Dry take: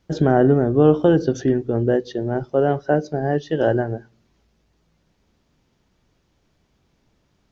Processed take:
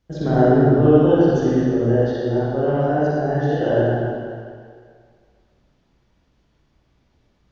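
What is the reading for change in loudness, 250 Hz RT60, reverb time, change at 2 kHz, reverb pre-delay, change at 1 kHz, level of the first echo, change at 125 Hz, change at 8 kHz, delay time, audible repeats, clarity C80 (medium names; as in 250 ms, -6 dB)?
+1.5 dB, 1.8 s, 2.0 s, +0.5 dB, 39 ms, +1.5 dB, no echo, +3.0 dB, no reading, no echo, no echo, -3.5 dB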